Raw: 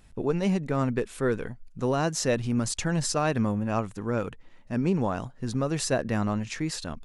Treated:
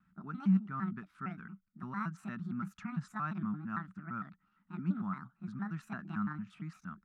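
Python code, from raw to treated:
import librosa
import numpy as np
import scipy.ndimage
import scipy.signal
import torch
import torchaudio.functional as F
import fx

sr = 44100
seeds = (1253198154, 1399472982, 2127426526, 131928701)

y = fx.pitch_trill(x, sr, semitones=6.5, every_ms=114)
y = fx.double_bandpass(y, sr, hz=500.0, octaves=2.8)
y = fx.vibrato(y, sr, rate_hz=0.88, depth_cents=28.0)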